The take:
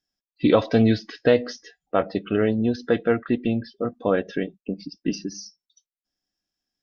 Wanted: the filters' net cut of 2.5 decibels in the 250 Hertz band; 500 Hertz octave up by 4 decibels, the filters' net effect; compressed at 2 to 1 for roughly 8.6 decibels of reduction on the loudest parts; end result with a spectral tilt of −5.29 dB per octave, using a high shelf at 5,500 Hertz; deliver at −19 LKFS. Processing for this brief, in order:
parametric band 250 Hz −4.5 dB
parametric band 500 Hz +5.5 dB
high-shelf EQ 5,500 Hz +5 dB
downward compressor 2 to 1, threshold −24 dBFS
level +8.5 dB

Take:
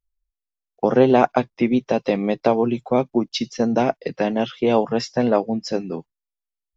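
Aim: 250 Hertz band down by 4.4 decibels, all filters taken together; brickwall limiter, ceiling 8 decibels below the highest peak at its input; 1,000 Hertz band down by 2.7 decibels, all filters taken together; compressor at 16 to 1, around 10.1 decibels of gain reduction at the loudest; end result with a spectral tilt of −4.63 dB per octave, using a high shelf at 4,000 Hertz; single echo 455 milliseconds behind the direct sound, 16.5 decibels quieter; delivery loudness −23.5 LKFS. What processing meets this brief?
parametric band 250 Hz −5 dB
parametric band 1,000 Hz −4 dB
high-shelf EQ 4,000 Hz +7.5 dB
downward compressor 16 to 1, threshold −22 dBFS
brickwall limiter −18 dBFS
single-tap delay 455 ms −16.5 dB
level +7 dB

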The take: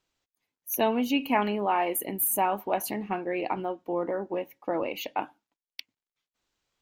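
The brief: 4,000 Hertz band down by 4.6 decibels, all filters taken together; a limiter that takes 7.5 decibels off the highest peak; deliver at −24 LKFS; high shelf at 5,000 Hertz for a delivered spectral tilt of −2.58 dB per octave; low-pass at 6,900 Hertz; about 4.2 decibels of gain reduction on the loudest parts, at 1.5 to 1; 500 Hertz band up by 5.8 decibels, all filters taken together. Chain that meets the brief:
low-pass filter 6,900 Hz
parametric band 500 Hz +7.5 dB
parametric band 4,000 Hz −4.5 dB
high-shelf EQ 5,000 Hz −7.5 dB
downward compressor 1.5 to 1, threshold −28 dBFS
level +7.5 dB
brickwall limiter −13 dBFS

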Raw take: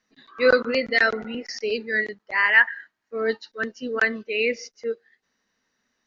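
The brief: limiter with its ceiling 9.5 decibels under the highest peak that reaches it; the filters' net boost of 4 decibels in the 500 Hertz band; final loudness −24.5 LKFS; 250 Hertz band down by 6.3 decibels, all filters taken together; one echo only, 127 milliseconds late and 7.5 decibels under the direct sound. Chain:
parametric band 250 Hz −8 dB
parametric band 500 Hz +6 dB
brickwall limiter −12.5 dBFS
single-tap delay 127 ms −7.5 dB
level −0.5 dB

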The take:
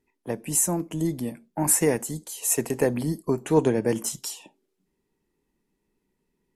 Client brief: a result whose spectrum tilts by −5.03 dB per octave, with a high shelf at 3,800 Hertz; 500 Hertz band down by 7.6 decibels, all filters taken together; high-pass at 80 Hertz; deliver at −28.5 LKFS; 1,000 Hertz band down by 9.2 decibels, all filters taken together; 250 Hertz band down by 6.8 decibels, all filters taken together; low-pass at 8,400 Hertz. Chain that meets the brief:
high-pass filter 80 Hz
low-pass filter 8,400 Hz
parametric band 250 Hz −7 dB
parametric band 500 Hz −5 dB
parametric band 1,000 Hz −8.5 dB
high-shelf EQ 3,800 Hz −8.5 dB
level +4.5 dB

